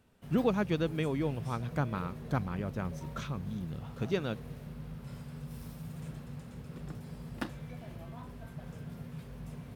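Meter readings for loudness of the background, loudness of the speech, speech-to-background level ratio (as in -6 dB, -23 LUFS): -44.5 LUFS, -34.5 LUFS, 10.0 dB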